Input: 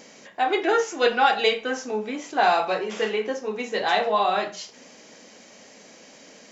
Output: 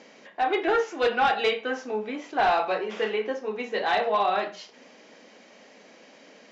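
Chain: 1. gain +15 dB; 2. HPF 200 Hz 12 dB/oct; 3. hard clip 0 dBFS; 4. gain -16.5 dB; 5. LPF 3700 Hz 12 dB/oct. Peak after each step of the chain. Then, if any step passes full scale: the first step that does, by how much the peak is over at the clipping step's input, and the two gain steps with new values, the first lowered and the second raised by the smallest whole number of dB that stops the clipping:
+8.0, +9.0, 0.0, -16.5, -16.0 dBFS; step 1, 9.0 dB; step 1 +6 dB, step 4 -7.5 dB

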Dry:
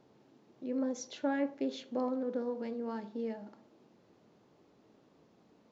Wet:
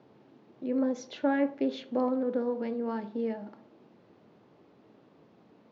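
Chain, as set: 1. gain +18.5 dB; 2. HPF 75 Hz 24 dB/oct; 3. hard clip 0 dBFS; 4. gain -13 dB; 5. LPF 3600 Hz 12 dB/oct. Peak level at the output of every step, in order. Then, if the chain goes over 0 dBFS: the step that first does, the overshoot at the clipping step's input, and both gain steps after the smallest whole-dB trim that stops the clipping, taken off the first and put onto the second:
-3.5, -3.0, -3.0, -16.0, -16.0 dBFS; no overload

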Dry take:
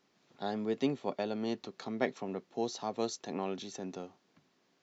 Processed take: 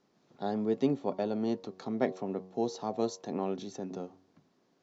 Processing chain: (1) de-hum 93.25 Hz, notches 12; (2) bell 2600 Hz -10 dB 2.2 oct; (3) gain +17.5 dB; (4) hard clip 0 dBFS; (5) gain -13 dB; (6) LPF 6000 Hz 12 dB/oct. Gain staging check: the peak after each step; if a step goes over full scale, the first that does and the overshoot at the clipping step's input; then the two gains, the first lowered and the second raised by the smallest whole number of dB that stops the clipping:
-17.0, -20.0, -2.5, -2.5, -15.5, -15.5 dBFS; no overload

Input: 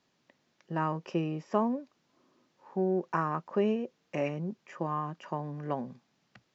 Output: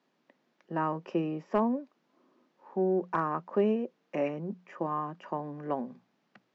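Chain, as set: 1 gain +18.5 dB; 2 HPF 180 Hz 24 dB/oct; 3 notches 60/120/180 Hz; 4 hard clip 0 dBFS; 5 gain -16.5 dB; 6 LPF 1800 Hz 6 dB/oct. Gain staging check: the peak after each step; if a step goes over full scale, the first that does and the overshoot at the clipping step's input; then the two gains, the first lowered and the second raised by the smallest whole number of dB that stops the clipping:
+5.0, +4.0, +4.0, 0.0, -16.5, -16.5 dBFS; step 1, 4.0 dB; step 1 +14.5 dB, step 5 -12.5 dB

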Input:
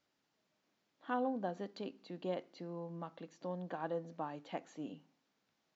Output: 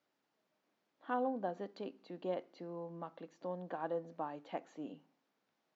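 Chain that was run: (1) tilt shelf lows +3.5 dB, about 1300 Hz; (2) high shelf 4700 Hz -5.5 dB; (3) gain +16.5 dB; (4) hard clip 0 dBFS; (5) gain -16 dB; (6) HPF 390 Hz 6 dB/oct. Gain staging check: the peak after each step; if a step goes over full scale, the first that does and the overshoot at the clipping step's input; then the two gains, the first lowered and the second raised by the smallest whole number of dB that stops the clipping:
-22.5, -22.5, -6.0, -6.0, -22.0, -24.5 dBFS; no overload

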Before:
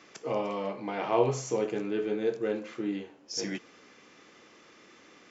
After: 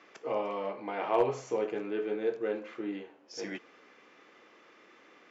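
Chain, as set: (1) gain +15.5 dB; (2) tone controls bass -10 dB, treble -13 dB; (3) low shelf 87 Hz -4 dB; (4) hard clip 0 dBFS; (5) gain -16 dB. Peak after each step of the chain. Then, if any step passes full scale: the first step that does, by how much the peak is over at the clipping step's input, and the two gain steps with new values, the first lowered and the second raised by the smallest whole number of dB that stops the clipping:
+4.5, +3.5, +3.5, 0.0, -16.0 dBFS; step 1, 3.5 dB; step 1 +11.5 dB, step 5 -12 dB

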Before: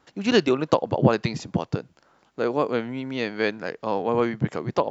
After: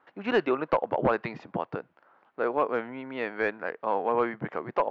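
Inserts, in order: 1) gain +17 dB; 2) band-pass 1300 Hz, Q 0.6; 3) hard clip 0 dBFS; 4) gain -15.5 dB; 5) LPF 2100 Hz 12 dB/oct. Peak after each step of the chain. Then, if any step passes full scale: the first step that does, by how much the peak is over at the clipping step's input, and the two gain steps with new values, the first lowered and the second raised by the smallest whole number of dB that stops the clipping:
+12.5, +9.5, 0.0, -15.5, -15.0 dBFS; step 1, 9.5 dB; step 1 +7 dB, step 4 -5.5 dB

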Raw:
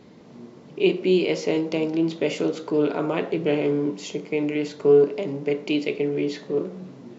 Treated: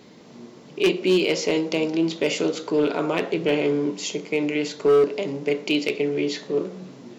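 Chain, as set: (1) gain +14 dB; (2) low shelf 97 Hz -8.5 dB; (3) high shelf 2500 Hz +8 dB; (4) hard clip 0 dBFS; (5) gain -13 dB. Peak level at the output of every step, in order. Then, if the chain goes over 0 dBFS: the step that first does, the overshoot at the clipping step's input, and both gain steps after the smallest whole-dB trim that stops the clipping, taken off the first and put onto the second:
+7.5, +6.5, +8.5, 0.0, -13.0 dBFS; step 1, 8.5 dB; step 1 +5 dB, step 5 -4 dB

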